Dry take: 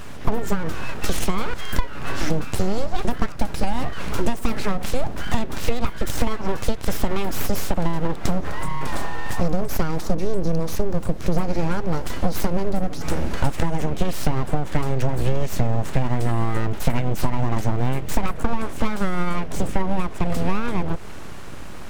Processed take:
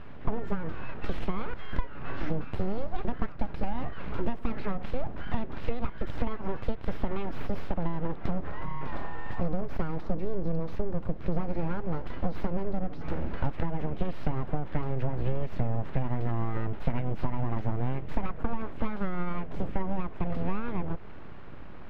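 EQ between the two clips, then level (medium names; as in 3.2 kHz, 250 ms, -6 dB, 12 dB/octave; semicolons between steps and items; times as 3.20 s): distance through air 390 m; -7.5 dB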